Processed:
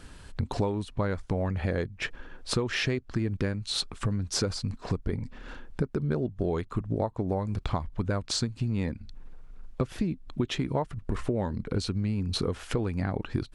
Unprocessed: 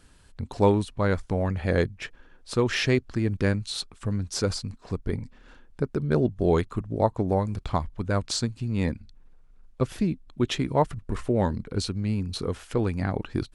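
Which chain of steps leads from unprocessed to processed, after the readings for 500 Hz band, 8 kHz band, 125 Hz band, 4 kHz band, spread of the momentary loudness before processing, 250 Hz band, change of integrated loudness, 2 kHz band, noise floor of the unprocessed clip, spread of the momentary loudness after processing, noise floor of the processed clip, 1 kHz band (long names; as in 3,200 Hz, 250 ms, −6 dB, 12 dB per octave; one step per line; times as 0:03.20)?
−5.5 dB, −1.0 dB, −2.5 dB, 0.0 dB, 9 LU, −3.5 dB, −4.0 dB, −3.0 dB, −54 dBFS, 6 LU, −50 dBFS, −6.0 dB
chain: high-shelf EQ 6,300 Hz −6.5 dB
downward compressor 12 to 1, threshold −34 dBFS, peak gain reduction 20 dB
level +9 dB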